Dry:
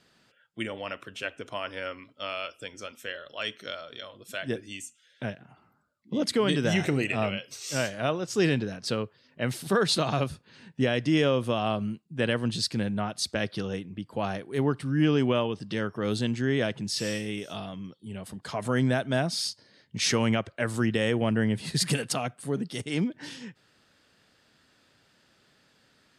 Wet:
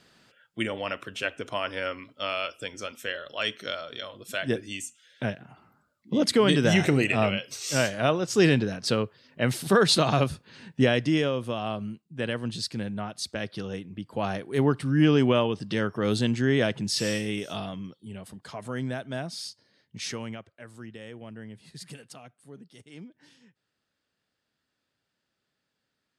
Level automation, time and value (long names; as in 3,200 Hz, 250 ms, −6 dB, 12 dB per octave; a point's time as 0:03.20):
0:10.89 +4 dB
0:11.32 −3.5 dB
0:13.45 −3.5 dB
0:14.56 +3 dB
0:17.68 +3 dB
0:18.65 −7 dB
0:19.97 −7 dB
0:20.59 −17 dB